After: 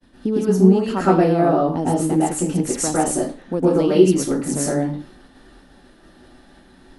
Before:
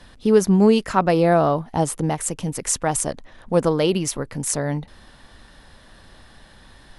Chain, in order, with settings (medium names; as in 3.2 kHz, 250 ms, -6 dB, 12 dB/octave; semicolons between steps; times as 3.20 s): expander -42 dBFS; peaking EQ 280 Hz +14 dB 1.2 oct; compression 10:1, threshold -10 dBFS, peak gain reduction 9 dB; reverberation RT60 0.35 s, pre-delay 105 ms, DRR -8 dB; trim -8 dB